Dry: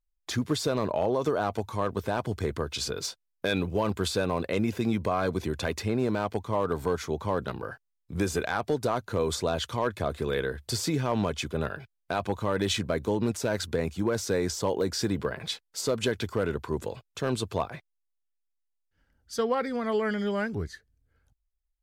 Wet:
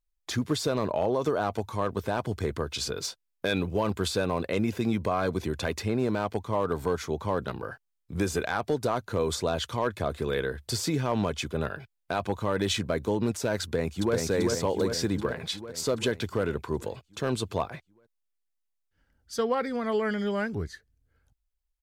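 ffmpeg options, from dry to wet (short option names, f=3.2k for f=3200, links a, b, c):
-filter_complex "[0:a]asplit=2[a][b];[b]afade=t=in:st=13.62:d=0.01,afade=t=out:st=14.16:d=0.01,aecho=0:1:390|780|1170|1560|1950|2340|2730|3120|3510|3900:0.707946|0.460165|0.299107|0.19442|0.126373|0.0821423|0.0533925|0.0347051|0.0225583|0.0146629[c];[a][c]amix=inputs=2:normalize=0"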